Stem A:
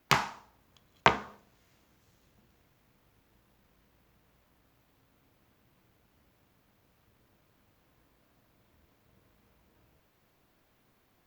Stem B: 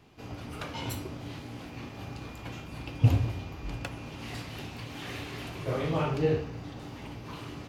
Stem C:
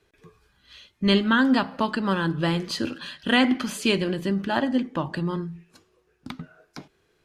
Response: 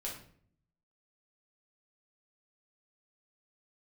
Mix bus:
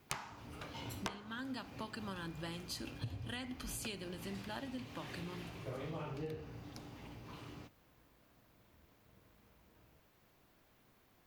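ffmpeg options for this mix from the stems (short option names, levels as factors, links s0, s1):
-filter_complex "[0:a]aeval=exprs='0.282*(abs(mod(val(0)/0.282+3,4)-2)-1)':c=same,volume=1[s0];[1:a]volume=0.316[s1];[2:a]aemphasis=mode=production:type=75fm,volume=0.126[s2];[s0][s1][s2]amix=inputs=3:normalize=0,acompressor=threshold=0.0112:ratio=12"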